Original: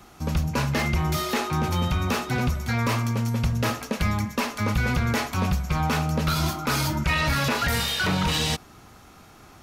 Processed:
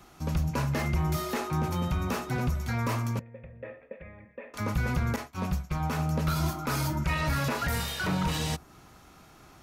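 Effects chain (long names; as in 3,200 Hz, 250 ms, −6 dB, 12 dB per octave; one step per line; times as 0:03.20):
0:03.19–0:04.54: formant resonators in series e
0:05.16–0:05.99: downward expander −20 dBFS
dynamic equaliser 3,500 Hz, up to −6 dB, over −41 dBFS, Q 0.79
on a send: convolution reverb, pre-delay 3 ms, DRR 19 dB
on the sum: level −4.5 dB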